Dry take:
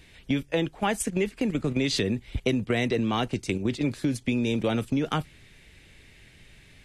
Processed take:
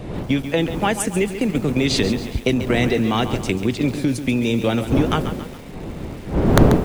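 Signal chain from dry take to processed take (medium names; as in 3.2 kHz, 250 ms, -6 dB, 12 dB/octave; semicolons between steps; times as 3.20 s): wind noise 320 Hz -30 dBFS; integer overflow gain 7 dB; bit-crushed delay 138 ms, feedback 55%, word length 7-bit, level -10 dB; trim +6 dB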